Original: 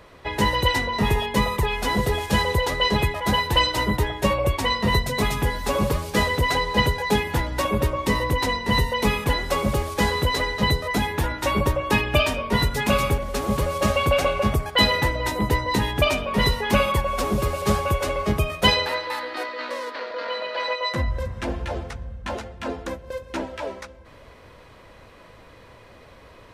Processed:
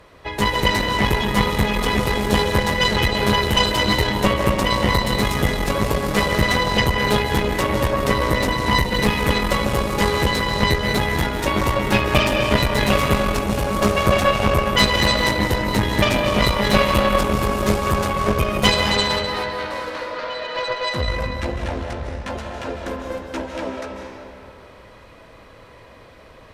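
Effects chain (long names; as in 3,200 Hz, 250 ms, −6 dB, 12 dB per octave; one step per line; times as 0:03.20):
comb and all-pass reverb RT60 2.6 s, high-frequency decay 0.7×, pre-delay 115 ms, DRR 0.5 dB
harmonic generator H 4 −12 dB, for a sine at −3 dBFS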